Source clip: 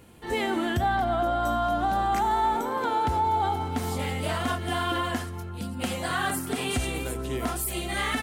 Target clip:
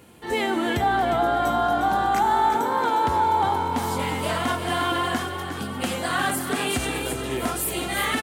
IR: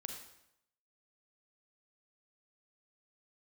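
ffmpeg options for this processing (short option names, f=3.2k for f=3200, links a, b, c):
-filter_complex "[0:a]highpass=f=140:p=1,asplit=8[a][b][c][d][e][f][g][h];[b]adelay=356,afreqshift=45,volume=-8.5dB[i];[c]adelay=712,afreqshift=90,volume=-13.4dB[j];[d]adelay=1068,afreqshift=135,volume=-18.3dB[k];[e]adelay=1424,afreqshift=180,volume=-23.1dB[l];[f]adelay=1780,afreqshift=225,volume=-28dB[m];[g]adelay=2136,afreqshift=270,volume=-32.9dB[n];[h]adelay=2492,afreqshift=315,volume=-37.8dB[o];[a][i][j][k][l][m][n][o]amix=inputs=8:normalize=0,volume=3.5dB"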